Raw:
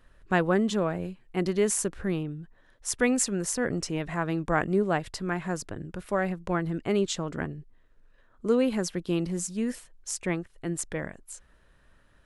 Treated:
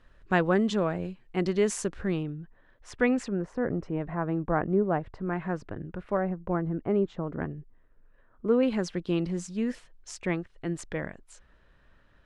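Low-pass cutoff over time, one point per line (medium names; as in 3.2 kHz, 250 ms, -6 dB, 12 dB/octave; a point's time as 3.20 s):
6 kHz
from 2.30 s 2.6 kHz
from 3.28 s 1.2 kHz
from 5.33 s 2.1 kHz
from 6.17 s 1.1 kHz
from 7.41 s 1.9 kHz
from 8.63 s 4.5 kHz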